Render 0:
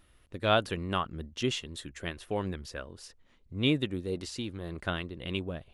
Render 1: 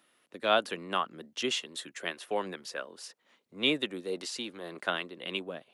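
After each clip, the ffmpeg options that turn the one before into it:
-filter_complex "[0:a]acrossover=split=400[s0][s1];[s0]highpass=f=220:w=0.5412,highpass=f=220:w=1.3066[s2];[s1]dynaudnorm=f=440:g=5:m=1.5[s3];[s2][s3]amix=inputs=2:normalize=0"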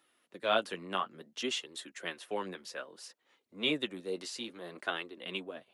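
-af "flanger=delay=2.3:depth=8.6:regen=-29:speed=0.6:shape=sinusoidal"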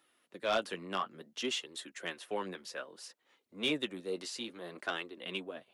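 -af "asoftclip=type=tanh:threshold=0.0794"

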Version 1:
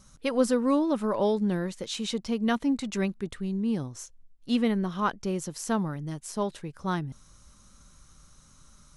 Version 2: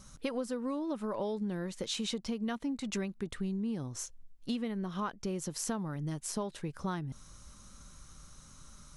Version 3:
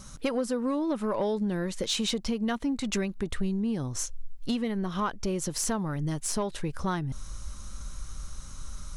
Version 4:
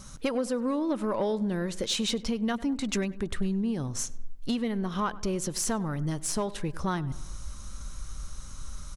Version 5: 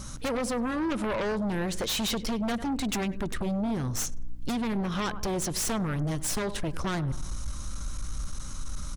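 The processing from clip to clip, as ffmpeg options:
-af "acompressor=threshold=0.02:ratio=10,volume=1.26"
-af "asubboost=boost=3:cutoff=84,aeval=exprs='0.1*sin(PI/2*1.58*val(0)/0.1)':c=same"
-filter_complex "[0:a]asplit=2[s0][s1];[s1]adelay=99,lowpass=f=2200:p=1,volume=0.126,asplit=2[s2][s3];[s3]adelay=99,lowpass=f=2200:p=1,volume=0.55,asplit=2[s4][s5];[s5]adelay=99,lowpass=f=2200:p=1,volume=0.55,asplit=2[s6][s7];[s7]adelay=99,lowpass=f=2200:p=1,volume=0.55,asplit=2[s8][s9];[s9]adelay=99,lowpass=f=2200:p=1,volume=0.55[s10];[s0][s2][s4][s6][s8][s10]amix=inputs=6:normalize=0"
-af "aeval=exprs='0.112*(cos(1*acos(clip(val(0)/0.112,-1,1)))-cos(1*PI/2))+0.0398*(cos(3*acos(clip(val(0)/0.112,-1,1)))-cos(3*PI/2))+0.0501*(cos(5*acos(clip(val(0)/0.112,-1,1)))-cos(5*PI/2))+0.00447*(cos(7*acos(clip(val(0)/0.112,-1,1)))-cos(7*PI/2))':c=same,aeval=exprs='val(0)+0.00501*(sin(2*PI*60*n/s)+sin(2*PI*2*60*n/s)/2+sin(2*PI*3*60*n/s)/3+sin(2*PI*4*60*n/s)/4+sin(2*PI*5*60*n/s)/5)':c=same"

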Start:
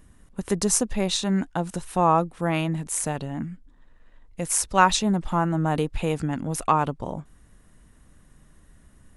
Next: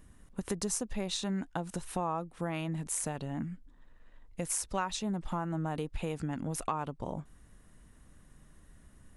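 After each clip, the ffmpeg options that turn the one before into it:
-af "acompressor=threshold=0.0398:ratio=4,volume=0.668"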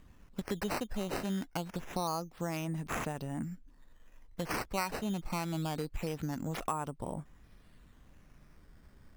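-af "acrusher=samples=9:mix=1:aa=0.000001:lfo=1:lforange=9:lforate=0.25,volume=0.891"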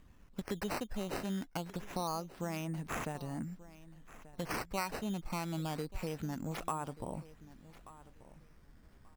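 -af "aecho=1:1:1184|2368:0.126|0.0252,volume=0.75"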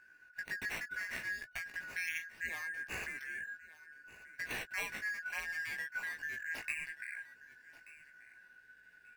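-af "afftfilt=real='real(if(lt(b,272),68*(eq(floor(b/68),0)*1+eq(floor(b/68),1)*0+eq(floor(b/68),2)*3+eq(floor(b/68),3)*2)+mod(b,68),b),0)':imag='imag(if(lt(b,272),68*(eq(floor(b/68),0)*1+eq(floor(b/68),1)*0+eq(floor(b/68),2)*3+eq(floor(b/68),3)*2)+mod(b,68),b),0)':win_size=2048:overlap=0.75,flanger=delay=16:depth=2.5:speed=0.68"

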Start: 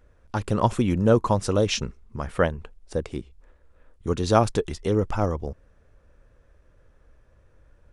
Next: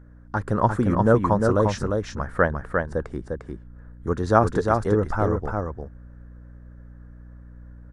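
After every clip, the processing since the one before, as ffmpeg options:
-filter_complex "[0:a]highshelf=f=2100:t=q:w=3:g=-8,aeval=exprs='val(0)+0.00501*(sin(2*PI*60*n/s)+sin(2*PI*2*60*n/s)/2+sin(2*PI*3*60*n/s)/3+sin(2*PI*4*60*n/s)/4+sin(2*PI*5*60*n/s)/5)':c=same,asplit=2[s0][s1];[s1]aecho=0:1:351:0.631[s2];[s0][s2]amix=inputs=2:normalize=0"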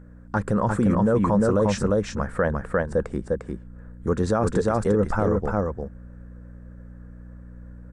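-af "equalizer=f=200:t=o:w=0.33:g=8,equalizer=f=500:t=o:w=0.33:g=6,equalizer=f=2500:t=o:w=0.33:g=4,equalizer=f=8000:t=o:w=0.33:g=9,alimiter=limit=0.211:level=0:latency=1:release=26,volume=1.12"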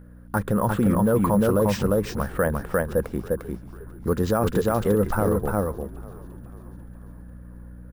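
-filter_complex "[0:a]acrusher=samples=4:mix=1:aa=0.000001,asplit=6[s0][s1][s2][s3][s4][s5];[s1]adelay=492,afreqshift=-76,volume=0.1[s6];[s2]adelay=984,afreqshift=-152,volume=0.0569[s7];[s3]adelay=1476,afreqshift=-228,volume=0.0324[s8];[s4]adelay=1968,afreqshift=-304,volume=0.0186[s9];[s5]adelay=2460,afreqshift=-380,volume=0.0106[s10];[s0][s6][s7][s8][s9][s10]amix=inputs=6:normalize=0"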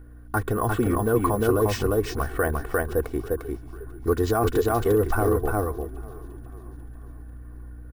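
-af "aecho=1:1:2.7:0.86,volume=0.841"

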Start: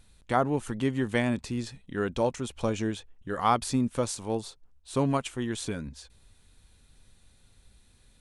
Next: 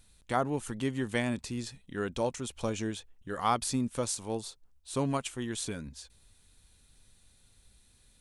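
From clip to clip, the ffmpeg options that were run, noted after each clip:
-af "highshelf=f=3900:g=7.5,volume=0.596"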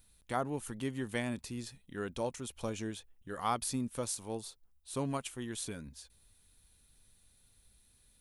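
-af "aexciter=amount=1.7:drive=7.6:freq=10000,volume=0.562"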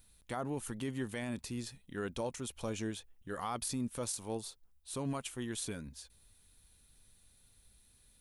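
-af "alimiter=level_in=1.68:limit=0.0631:level=0:latency=1:release=16,volume=0.596,volume=1.12"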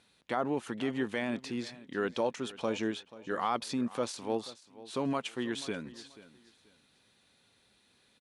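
-af "highpass=230,lowpass=4000,aecho=1:1:484|968:0.126|0.0315,volume=2.37"

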